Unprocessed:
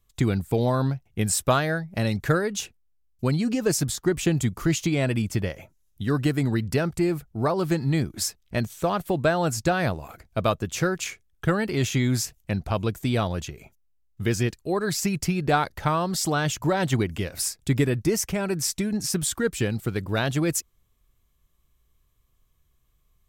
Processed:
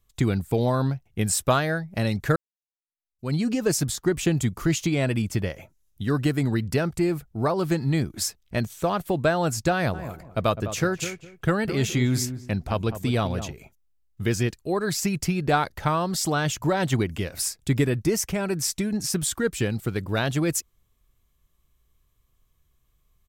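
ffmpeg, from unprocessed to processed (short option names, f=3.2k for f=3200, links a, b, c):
-filter_complex "[0:a]asplit=3[a][b][c];[a]afade=t=out:st=9.93:d=0.02[d];[b]asplit=2[e][f];[f]adelay=205,lowpass=f=920:p=1,volume=-9.5dB,asplit=2[g][h];[h]adelay=205,lowpass=f=920:p=1,volume=0.25,asplit=2[i][j];[j]adelay=205,lowpass=f=920:p=1,volume=0.25[k];[e][g][i][k]amix=inputs=4:normalize=0,afade=t=in:st=9.93:d=0.02,afade=t=out:st=13.51:d=0.02[l];[c]afade=t=in:st=13.51:d=0.02[m];[d][l][m]amix=inputs=3:normalize=0,asplit=2[n][o];[n]atrim=end=2.36,asetpts=PTS-STARTPTS,afade=t=out:st=2.356:d=0.004:c=hsin[p];[o]atrim=start=2.36,asetpts=PTS-STARTPTS,afade=t=in:d=0.98:c=exp[q];[p][q]concat=n=2:v=0:a=1"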